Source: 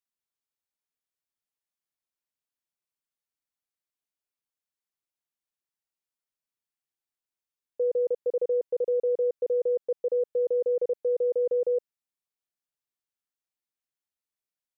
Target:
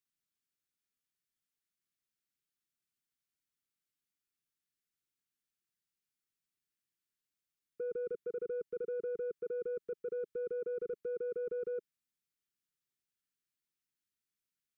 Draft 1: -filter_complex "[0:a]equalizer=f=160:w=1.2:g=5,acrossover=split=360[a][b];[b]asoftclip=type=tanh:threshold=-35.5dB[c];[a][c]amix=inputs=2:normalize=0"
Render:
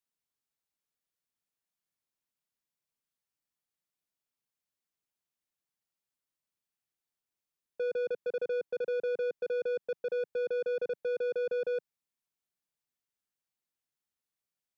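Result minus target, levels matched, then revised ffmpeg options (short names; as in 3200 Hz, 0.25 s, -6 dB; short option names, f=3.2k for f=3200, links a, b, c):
1000 Hz band +4.5 dB
-filter_complex "[0:a]asuperstop=centerf=720:order=8:qfactor=0.93,equalizer=f=160:w=1.2:g=5,acrossover=split=360[a][b];[b]asoftclip=type=tanh:threshold=-35.5dB[c];[a][c]amix=inputs=2:normalize=0"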